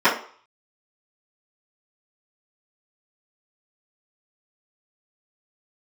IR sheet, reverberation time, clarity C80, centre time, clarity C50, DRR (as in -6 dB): 0.50 s, 13.5 dB, 25 ms, 8.5 dB, -15.0 dB